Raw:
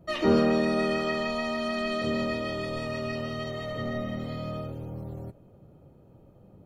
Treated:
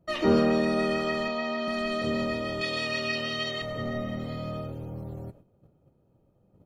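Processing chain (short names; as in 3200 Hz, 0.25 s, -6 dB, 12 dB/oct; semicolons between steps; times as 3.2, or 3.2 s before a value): 2.61–3.62 weighting filter D; gate -50 dBFS, range -11 dB; 1.28–1.68 three-band isolator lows -14 dB, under 150 Hz, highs -21 dB, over 5900 Hz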